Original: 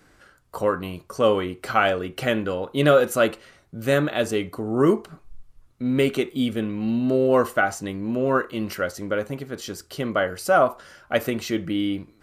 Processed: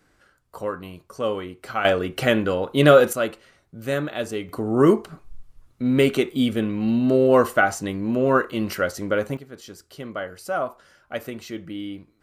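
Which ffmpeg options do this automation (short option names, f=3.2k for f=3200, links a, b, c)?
-af "asetnsamples=n=441:p=0,asendcmd='1.85 volume volume 3.5dB;3.13 volume volume -4.5dB;4.49 volume volume 2.5dB;9.37 volume volume -8dB',volume=-6dB"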